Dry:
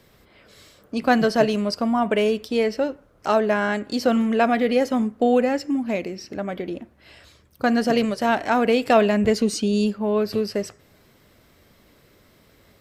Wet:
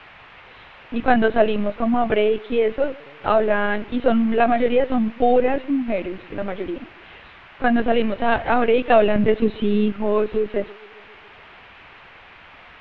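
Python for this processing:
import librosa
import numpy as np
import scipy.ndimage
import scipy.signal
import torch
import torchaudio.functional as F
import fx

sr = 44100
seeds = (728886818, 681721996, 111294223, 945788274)

y = fx.echo_banded(x, sr, ms=137, feedback_pct=72, hz=360.0, wet_db=-23.0)
y = fx.lpc_vocoder(y, sr, seeds[0], excitation='pitch_kept', order=16)
y = fx.dmg_noise_band(y, sr, seeds[1], low_hz=620.0, high_hz=2800.0, level_db=-48.0)
y = y * librosa.db_to_amplitude(2.0)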